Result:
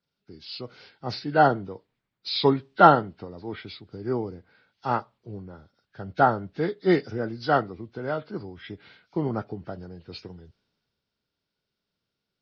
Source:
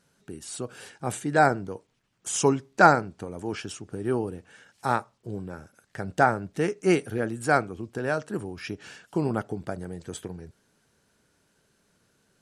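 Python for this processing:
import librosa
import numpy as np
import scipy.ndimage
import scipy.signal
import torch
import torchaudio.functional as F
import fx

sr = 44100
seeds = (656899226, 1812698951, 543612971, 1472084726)

y = fx.freq_compress(x, sr, knee_hz=1300.0, ratio=1.5)
y = fx.band_widen(y, sr, depth_pct=40)
y = y * librosa.db_to_amplitude(-1.0)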